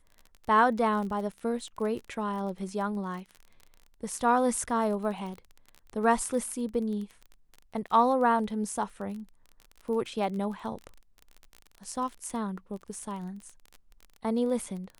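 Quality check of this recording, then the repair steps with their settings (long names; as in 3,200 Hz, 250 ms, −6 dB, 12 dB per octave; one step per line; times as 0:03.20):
surface crackle 27 per second −36 dBFS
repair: click removal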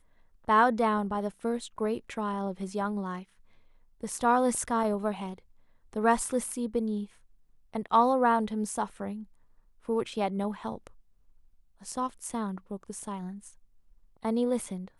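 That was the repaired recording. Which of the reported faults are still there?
none of them is left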